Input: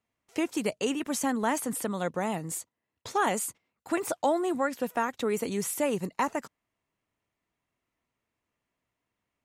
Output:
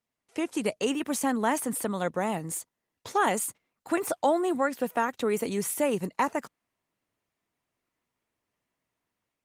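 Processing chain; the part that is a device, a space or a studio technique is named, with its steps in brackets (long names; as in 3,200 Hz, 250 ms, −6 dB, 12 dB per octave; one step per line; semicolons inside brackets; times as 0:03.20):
video call (high-pass filter 100 Hz 6 dB per octave; automatic gain control gain up to 4.5 dB; level −2.5 dB; Opus 32 kbit/s 48,000 Hz)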